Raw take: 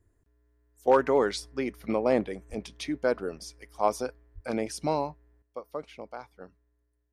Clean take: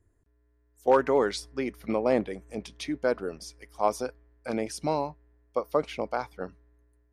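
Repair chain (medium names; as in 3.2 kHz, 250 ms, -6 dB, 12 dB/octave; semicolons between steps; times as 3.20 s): de-plosive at 2.49/4.34 s; gain correction +10.5 dB, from 5.42 s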